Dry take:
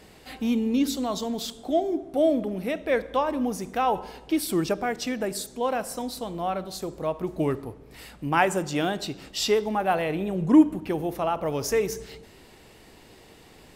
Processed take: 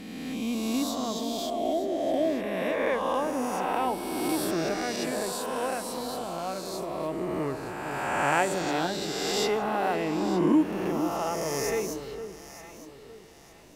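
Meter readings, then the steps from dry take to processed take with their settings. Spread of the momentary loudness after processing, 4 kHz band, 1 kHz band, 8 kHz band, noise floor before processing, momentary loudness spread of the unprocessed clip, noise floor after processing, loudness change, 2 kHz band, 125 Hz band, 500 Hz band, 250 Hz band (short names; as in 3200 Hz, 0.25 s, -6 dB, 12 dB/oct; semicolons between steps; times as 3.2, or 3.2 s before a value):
9 LU, -0.5 dB, -1.0 dB, 0.0 dB, -52 dBFS, 10 LU, -48 dBFS, -2.5 dB, 0.0 dB, -4.0 dB, -2.0 dB, -3.5 dB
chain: spectral swells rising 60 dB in 2.20 s; on a send: echo with dull and thin repeats by turns 0.456 s, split 1400 Hz, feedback 55%, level -8.5 dB; on the sum: gain -7.5 dB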